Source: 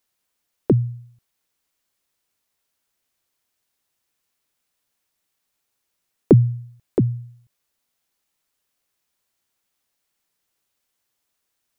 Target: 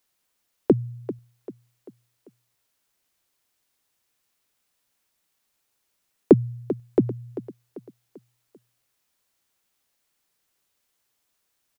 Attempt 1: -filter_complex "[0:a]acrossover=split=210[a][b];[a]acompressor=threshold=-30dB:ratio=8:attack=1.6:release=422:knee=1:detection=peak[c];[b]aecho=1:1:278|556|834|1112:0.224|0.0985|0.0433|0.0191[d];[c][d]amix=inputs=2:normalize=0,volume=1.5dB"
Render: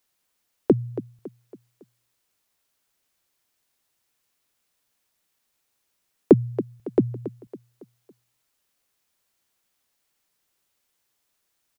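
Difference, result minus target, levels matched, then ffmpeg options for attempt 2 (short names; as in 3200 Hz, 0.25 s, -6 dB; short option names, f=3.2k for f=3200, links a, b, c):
echo 0.114 s early
-filter_complex "[0:a]acrossover=split=210[a][b];[a]acompressor=threshold=-30dB:ratio=8:attack=1.6:release=422:knee=1:detection=peak[c];[b]aecho=1:1:392|784|1176|1568:0.224|0.0985|0.0433|0.0191[d];[c][d]amix=inputs=2:normalize=0,volume=1.5dB"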